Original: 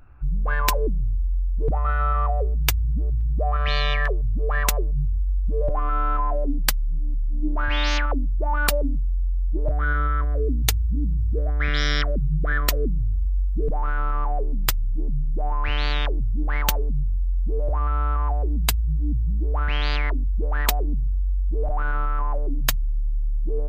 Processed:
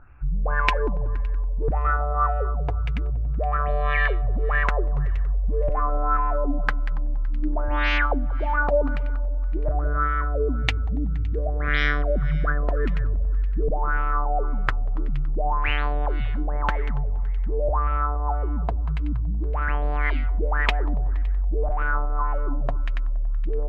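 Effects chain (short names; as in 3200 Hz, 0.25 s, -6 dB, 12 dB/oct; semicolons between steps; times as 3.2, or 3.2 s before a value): multi-head echo 94 ms, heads second and third, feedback 47%, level -17 dB; LFO low-pass sine 1.8 Hz 610–2500 Hz; gain -1 dB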